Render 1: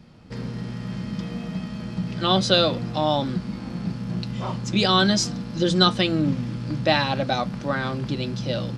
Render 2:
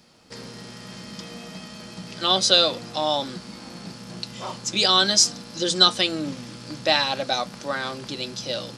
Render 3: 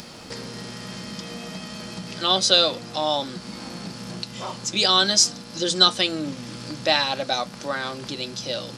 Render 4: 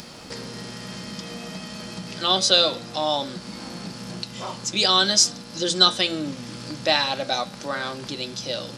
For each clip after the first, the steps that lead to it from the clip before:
tone controls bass -14 dB, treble +12 dB; gain -1 dB
upward compressor, threshold -28 dBFS
de-hum 114.1 Hz, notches 35

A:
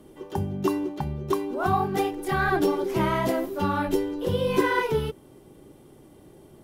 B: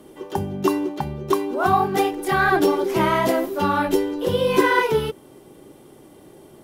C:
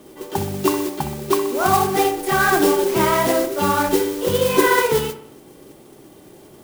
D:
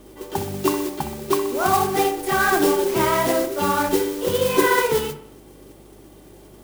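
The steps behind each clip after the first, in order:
low shelf 160 Hz -10.5 dB; gain +6.5 dB
modulation noise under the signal 11 dB; on a send: dark delay 63 ms, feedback 51%, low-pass 2200 Hz, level -10 dB; on the sum: gain +1 dB
de-hum 49.33 Hz, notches 4; hum 50 Hz, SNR 30 dB; gain -2 dB

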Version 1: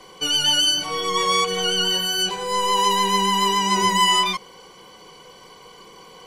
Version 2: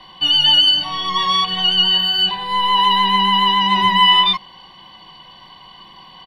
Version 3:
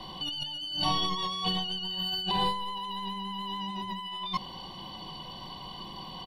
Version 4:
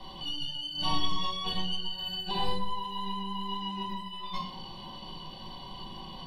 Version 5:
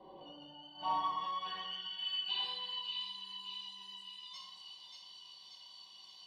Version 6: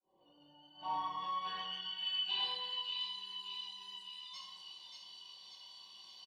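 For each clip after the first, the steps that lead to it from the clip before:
resonant high shelf 5100 Hz -13 dB, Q 3; comb 1.1 ms, depth 92%; gain -1 dB
bell 1800 Hz -14.5 dB 1.8 oct; negative-ratio compressor -32 dBFS, ratio -1; gain -1.5 dB
reverb RT60 0.55 s, pre-delay 5 ms, DRR -3 dB; gain -6.5 dB
band-pass sweep 460 Hz -> 6300 Hz, 0.06–3.26; split-band echo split 2000 Hz, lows 82 ms, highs 0.583 s, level -4.5 dB; gain +1 dB
opening faded in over 1.61 s; doubler 28 ms -6.5 dB

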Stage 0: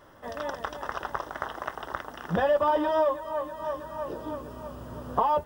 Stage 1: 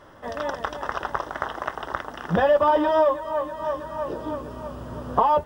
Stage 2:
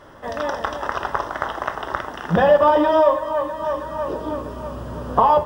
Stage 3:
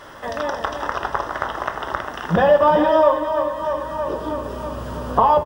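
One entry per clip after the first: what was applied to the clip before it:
high shelf 11000 Hz -11 dB; gain +5 dB
reverb RT60 0.65 s, pre-delay 17 ms, DRR 8 dB; gain +3.5 dB
on a send: echo 0.401 s -10.5 dB; on the sum: mismatched tape noise reduction encoder only

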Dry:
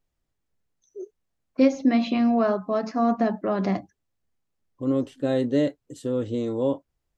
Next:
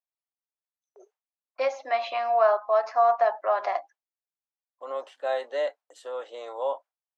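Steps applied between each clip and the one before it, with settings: gate with hold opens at -42 dBFS; steep high-pass 690 Hz 36 dB/oct; tilt -4.5 dB/oct; gain +6 dB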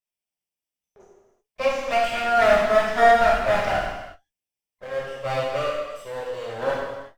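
minimum comb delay 0.37 ms; non-linear reverb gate 0.4 s falling, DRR -5 dB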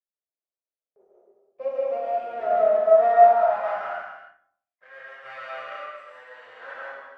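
added harmonics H 2 -12 dB, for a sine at -5 dBFS; digital reverb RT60 0.64 s, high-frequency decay 0.4×, pre-delay 0.1 s, DRR -3 dB; band-pass sweep 490 Hz -> 1700 Hz, 2.73–4.4; gain -5.5 dB

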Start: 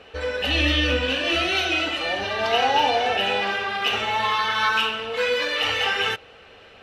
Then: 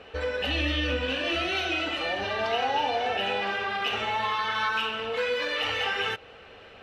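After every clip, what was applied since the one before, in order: high shelf 4200 Hz -6.5 dB; compressor 2:1, threshold -28 dBFS, peak gain reduction 7 dB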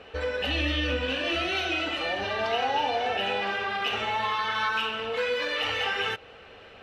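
nothing audible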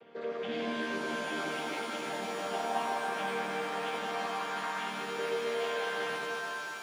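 chord vocoder major triad, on D#3; shimmer reverb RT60 3.1 s, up +7 st, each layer -2 dB, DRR 1 dB; gain -8.5 dB

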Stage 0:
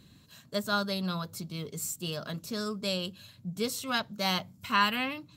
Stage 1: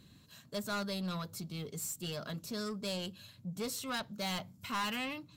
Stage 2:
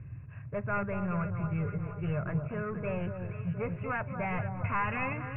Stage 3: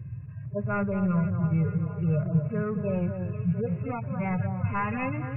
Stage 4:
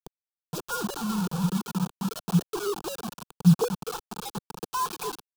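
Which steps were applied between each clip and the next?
soft clip -29.5 dBFS, distortion -8 dB; gain -2.5 dB
Chebyshev low-pass 2600 Hz, order 8; resonant low shelf 160 Hz +10.5 dB, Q 3; echo with dull and thin repeats by turns 0.236 s, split 1300 Hz, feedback 74%, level -7 dB; gain +6 dB
median-filter separation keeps harmonic; bell 220 Hz +8.5 dB 2.9 oct
sine-wave speech; bit-crush 5-bit; fixed phaser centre 400 Hz, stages 8

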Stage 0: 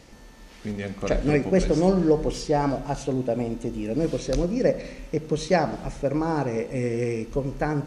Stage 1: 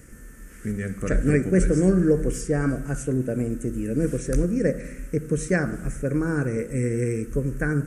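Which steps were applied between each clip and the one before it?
EQ curve 100 Hz 0 dB, 470 Hz -6 dB, 860 Hz -23 dB, 1500 Hz +2 dB, 4100 Hz -24 dB, 8200 Hz +6 dB; gain +5.5 dB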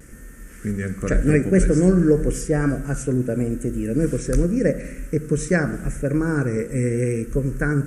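vibrato 0.88 Hz 38 cents; gain +3 dB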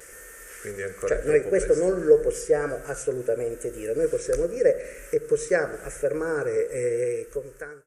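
ending faded out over 1.02 s; resonant low shelf 330 Hz -11.5 dB, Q 3; mismatched tape noise reduction encoder only; gain -4 dB

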